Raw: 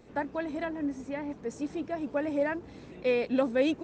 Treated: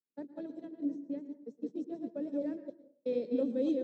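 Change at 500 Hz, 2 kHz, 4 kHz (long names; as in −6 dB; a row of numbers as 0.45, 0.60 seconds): −7.0 dB, below −25 dB, below −15 dB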